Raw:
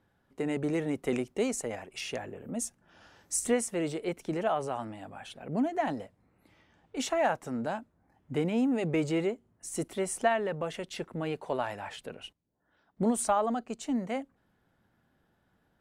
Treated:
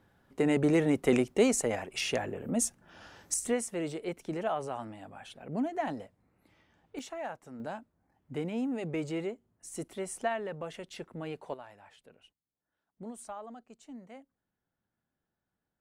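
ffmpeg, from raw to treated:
-af "asetnsamples=n=441:p=0,asendcmd='3.34 volume volume -3dB;6.99 volume volume -11.5dB;7.6 volume volume -5.5dB;11.54 volume volume -16dB',volume=1.78"

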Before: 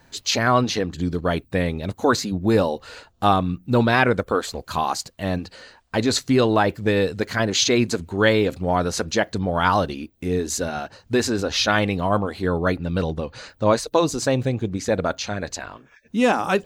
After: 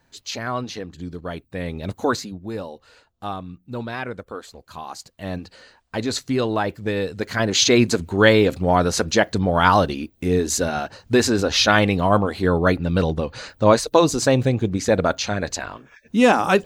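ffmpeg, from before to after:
-af "volume=5.96,afade=t=in:st=1.55:d=0.38:silence=0.375837,afade=t=out:st=1.93:d=0.47:silence=0.251189,afade=t=in:st=4.85:d=0.52:silence=0.398107,afade=t=in:st=7.09:d=0.66:silence=0.421697"

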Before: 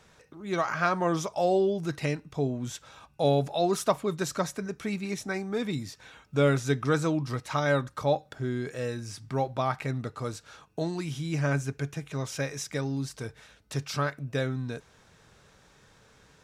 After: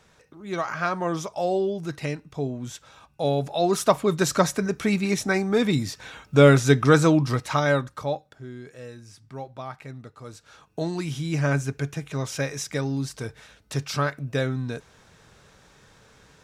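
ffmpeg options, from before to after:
-af "volume=11.2,afade=t=in:st=3.36:d=1.02:silence=0.354813,afade=t=out:st=7.15:d=0.71:silence=0.421697,afade=t=out:st=7.86:d=0.49:silence=0.334965,afade=t=in:st=10.24:d=0.74:silence=0.251189"

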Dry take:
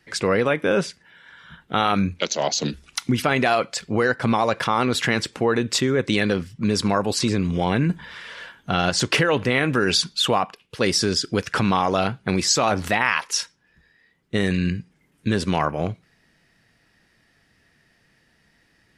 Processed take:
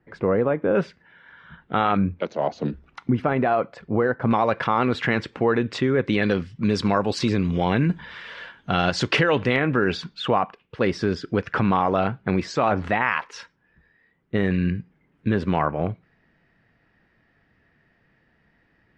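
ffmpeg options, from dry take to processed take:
-af "asetnsamples=n=441:p=0,asendcmd='0.75 lowpass f 2100;1.97 lowpass f 1200;4.31 lowpass f 2400;6.23 lowpass f 3900;9.56 lowpass f 2000',lowpass=1000"

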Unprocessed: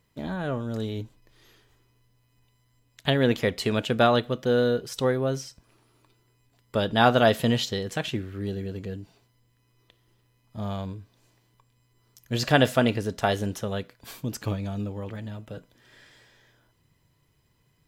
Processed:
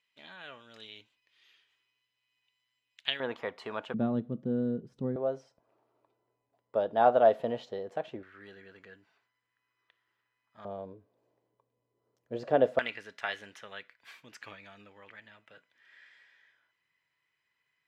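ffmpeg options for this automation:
-af "asetnsamples=n=441:p=0,asendcmd='3.2 bandpass f 1000;3.94 bandpass f 200;5.16 bandpass f 640;8.23 bandpass f 1600;10.65 bandpass f 520;12.79 bandpass f 2000',bandpass=f=2700:t=q:w=2.2:csg=0"

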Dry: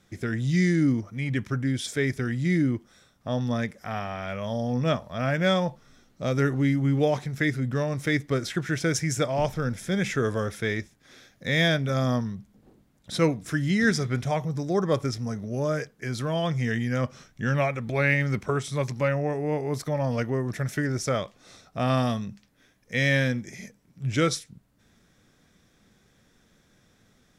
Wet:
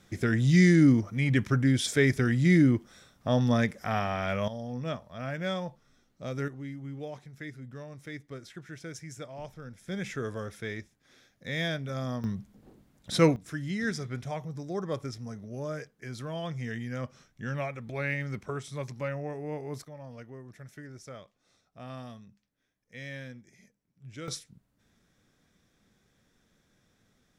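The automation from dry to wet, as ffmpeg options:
-af "asetnsamples=n=441:p=0,asendcmd='4.48 volume volume -9.5dB;6.48 volume volume -16.5dB;9.88 volume volume -9dB;12.24 volume volume 1dB;13.36 volume volume -9dB;19.85 volume volume -18.5dB;24.28 volume volume -7dB',volume=1.33"

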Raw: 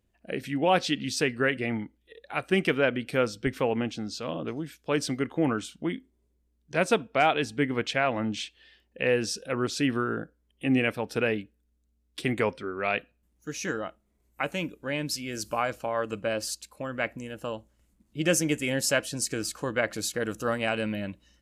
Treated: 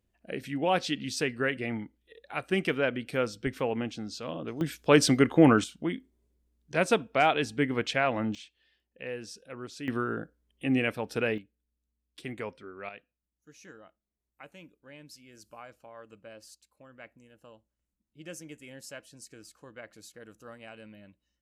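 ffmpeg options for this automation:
-af "asetnsamples=n=441:p=0,asendcmd='4.61 volume volume 7dB;5.64 volume volume -1dB;8.35 volume volume -13dB;9.88 volume volume -2.5dB;11.38 volume volume -11dB;12.89 volume volume -19dB',volume=0.668"

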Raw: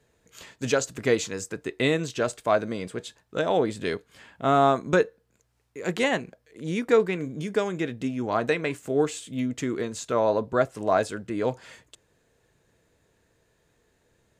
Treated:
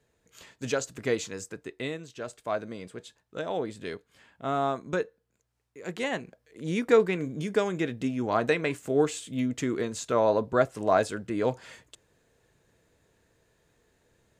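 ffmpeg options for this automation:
-af "volume=2.82,afade=t=out:st=1.42:d=0.63:silence=0.334965,afade=t=in:st=2.05:d=0.48:silence=0.473151,afade=t=in:st=5.96:d=0.81:silence=0.421697"

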